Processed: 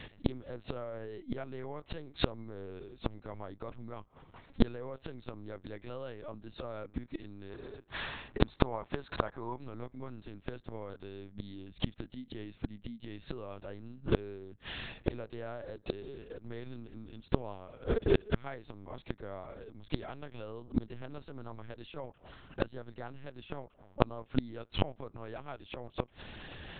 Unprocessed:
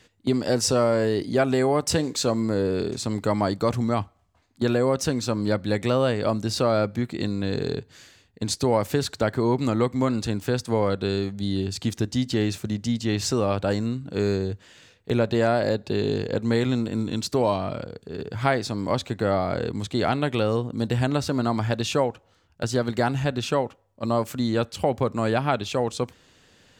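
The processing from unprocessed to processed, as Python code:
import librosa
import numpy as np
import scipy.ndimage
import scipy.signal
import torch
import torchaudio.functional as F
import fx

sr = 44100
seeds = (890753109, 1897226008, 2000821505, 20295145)

y = fx.lpc_vocoder(x, sr, seeds[0], excitation='pitch_kept', order=8)
y = fx.peak_eq(y, sr, hz=1000.0, db=8.5, octaves=1.3, at=(7.5, 9.62))
y = fx.gate_flip(y, sr, shuts_db=-22.0, range_db=-31)
y = y * 10.0 ** (10.5 / 20.0)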